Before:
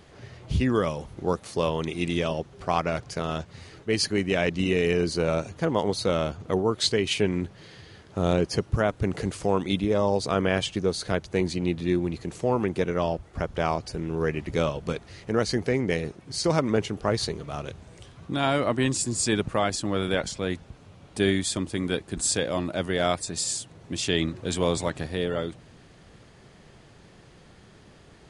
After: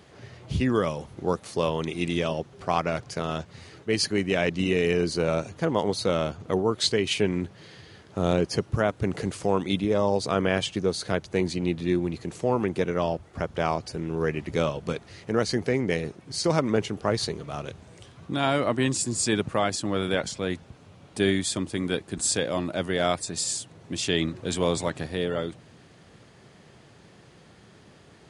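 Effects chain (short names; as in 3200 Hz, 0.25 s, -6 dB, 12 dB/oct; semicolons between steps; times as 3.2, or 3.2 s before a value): HPF 82 Hz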